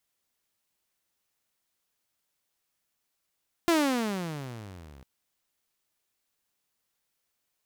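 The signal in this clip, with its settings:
pitch glide with a swell saw, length 1.35 s, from 349 Hz, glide −29.5 semitones, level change −29 dB, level −17 dB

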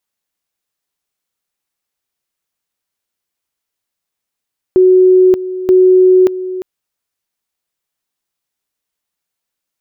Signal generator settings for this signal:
tone at two levels in turn 370 Hz −4 dBFS, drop 14 dB, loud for 0.58 s, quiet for 0.35 s, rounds 2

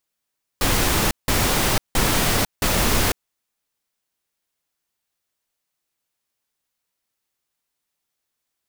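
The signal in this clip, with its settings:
noise bursts pink, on 0.50 s, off 0.17 s, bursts 4, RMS −19 dBFS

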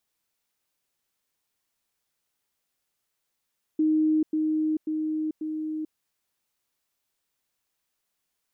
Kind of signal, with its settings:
level staircase 311 Hz −19 dBFS, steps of −3 dB, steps 4, 0.44 s 0.10 s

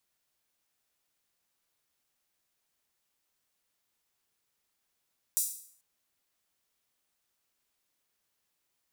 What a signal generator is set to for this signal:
open synth hi-hat length 0.44 s, high-pass 7,700 Hz, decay 0.57 s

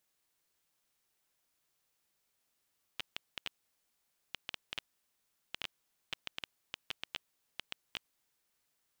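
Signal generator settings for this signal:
Geiger counter clicks 5.9 per second −20 dBFS 5.20 s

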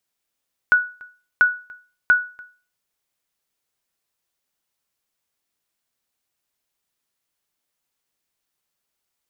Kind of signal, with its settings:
ping with an echo 1,470 Hz, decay 0.36 s, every 0.69 s, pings 3, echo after 0.29 s, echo −25.5 dB −7 dBFS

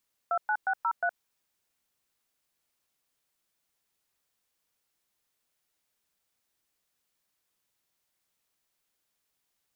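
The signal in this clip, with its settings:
touch tones "29603", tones 67 ms, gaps 112 ms, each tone −27 dBFS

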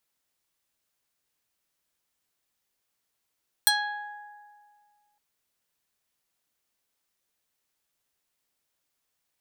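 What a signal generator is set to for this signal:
Karplus-Strong string G#5, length 1.51 s, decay 2.01 s, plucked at 0.34, medium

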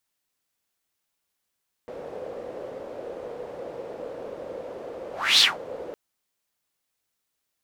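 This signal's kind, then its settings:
pass-by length 4.06 s, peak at 0:03.52, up 0.30 s, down 0.19 s, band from 510 Hz, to 4,100 Hz, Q 5.4, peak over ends 21 dB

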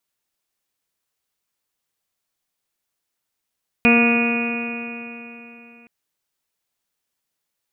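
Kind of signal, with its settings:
stiff-string partials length 2.02 s, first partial 234 Hz, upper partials −6.5/−10/−16.5/−15/−14/−19/−18.5/−11.5/0/−14 dB, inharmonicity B 0.0012, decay 3.35 s, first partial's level −13.5 dB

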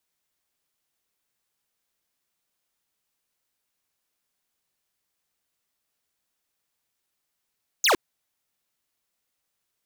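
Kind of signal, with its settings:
single falling chirp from 7,100 Hz, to 290 Hz, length 0.11 s square, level −19 dB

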